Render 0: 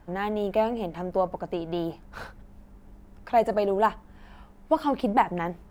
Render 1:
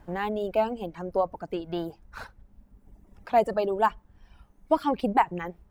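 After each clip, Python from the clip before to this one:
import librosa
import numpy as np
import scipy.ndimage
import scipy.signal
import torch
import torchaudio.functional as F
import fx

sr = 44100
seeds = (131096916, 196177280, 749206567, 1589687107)

y = fx.dereverb_blind(x, sr, rt60_s=1.8)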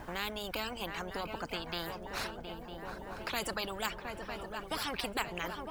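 y = fx.echo_swing(x, sr, ms=954, ratio=3, feedback_pct=51, wet_db=-18)
y = fx.spectral_comp(y, sr, ratio=4.0)
y = y * librosa.db_to_amplitude(-9.0)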